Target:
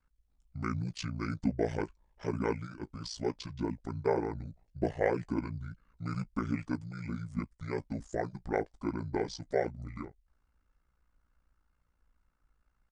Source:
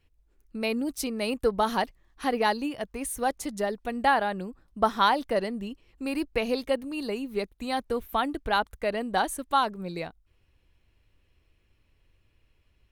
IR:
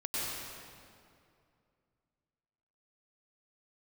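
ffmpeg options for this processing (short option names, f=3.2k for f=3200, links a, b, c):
-af "asetrate=22696,aresample=44100,atempo=1.94306,flanger=delay=7.6:depth=2.4:regen=-43:speed=0.18:shape=sinusoidal,aeval=exprs='val(0)*sin(2*PI*29*n/s)':c=same"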